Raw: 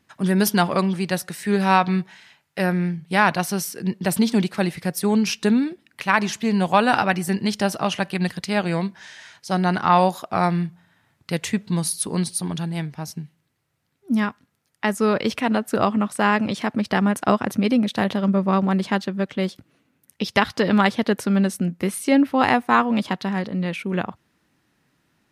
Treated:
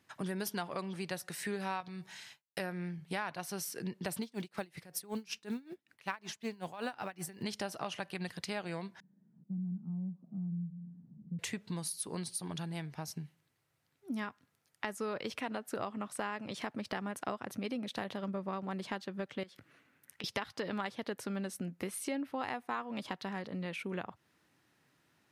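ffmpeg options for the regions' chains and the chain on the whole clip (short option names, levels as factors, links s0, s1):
-filter_complex "[0:a]asettb=1/sr,asplit=3[s0][s1][s2];[s0]atrim=end=1.804[s3];[s1]atrim=start=1.8:end=2.6,asetpts=PTS-STARTPTS,afade=t=in:d=0.004:c=qsin,afade=t=out:st=0.796:d=0.004:c=qsin,agate=range=0.0224:threshold=0.00355:ratio=3:release=100:detection=peak,bass=f=250:g=4,treble=f=4000:g=10,acompressor=threshold=0.0794:ratio=6:attack=3.2:release=140:knee=1:detection=peak[s4];[s2]atrim=start=2.596[s5];[s3][s4]acrossfade=d=0.004:c1=hsin:c2=qsin[s6];[s6][s5]acrossfade=d=0.004:c1=qsin:c2=hsin,asettb=1/sr,asplit=3[s7][s8][s9];[s7]atrim=end=4.224[s10];[s8]atrim=start=4.22:end=7.43,asetpts=PTS-STARTPTS,afade=t=in:d=0.004:c=qsin,afade=t=out:st=3.206:d=0.004:c=qsin,acrusher=bits=9:mode=log:mix=0:aa=0.000001,aeval=exprs='val(0)*pow(10,-25*(0.5-0.5*cos(2*PI*5.3*n/s))/20)':c=same[s11];[s9]atrim=start=7.426[s12];[s10][s11]acrossfade=d=0.004:c1=hsin:c2=qsin[s13];[s13][s12]acrossfade=d=0.004:c1=qsin:c2=hsin,asettb=1/sr,asplit=3[s14][s15][s16];[s14]atrim=end=9.004[s17];[s15]atrim=start=9:end=11.39,asetpts=PTS-STARTPTS,afade=t=in:d=0.004:c=qsin,afade=t=out:st=2.386:d=0.004:c=qsin,aeval=exprs='val(0)+0.5*0.0376*sgn(val(0))':c=same,asuperpass=centerf=190:order=4:qfactor=3.4[s18];[s16]atrim=start=11.386[s19];[s17][s18]acrossfade=d=0.004:c1=hsin:c2=qsin[s20];[s20][s19]acrossfade=d=0.004:c1=qsin:c2=hsin,asettb=1/sr,asplit=3[s21][s22][s23];[s21]atrim=end=19.434[s24];[s22]atrim=start=19.43:end=20.24,asetpts=PTS-STARTPTS,afade=t=in:d=0.004:c=qsin,afade=t=out:st=0.806:d=0.004:c=qsin,equalizer=f=1700:w=1.1:g=9.5,acompressor=threshold=0.0112:ratio=5:attack=3.2:release=140:knee=1:detection=peak[s25];[s23]atrim=start=20.236[s26];[s24][s25]acrossfade=d=0.004:c1=hsin:c2=qsin[s27];[s27][s26]acrossfade=d=0.004:c1=qsin:c2=hsin,highpass=90,equalizer=f=210:w=1.6:g=-5.5,acompressor=threshold=0.0224:ratio=4,volume=0.631"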